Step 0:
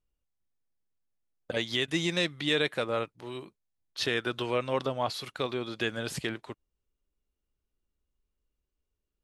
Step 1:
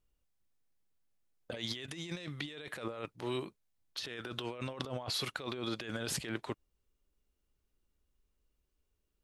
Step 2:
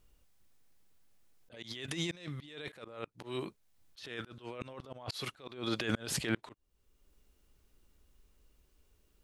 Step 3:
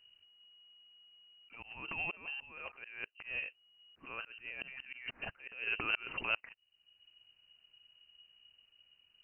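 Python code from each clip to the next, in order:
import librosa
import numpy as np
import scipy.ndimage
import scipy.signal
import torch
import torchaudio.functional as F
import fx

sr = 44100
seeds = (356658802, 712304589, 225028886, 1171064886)

y1 = fx.over_compress(x, sr, threshold_db=-38.0, ratio=-1.0)
y1 = y1 * librosa.db_to_amplitude(-2.5)
y2 = fx.auto_swell(y1, sr, attack_ms=635.0)
y2 = y2 * librosa.db_to_amplitude(12.0)
y3 = fx.freq_invert(y2, sr, carrier_hz=2900)
y3 = y3 * librosa.db_to_amplitude(-1.5)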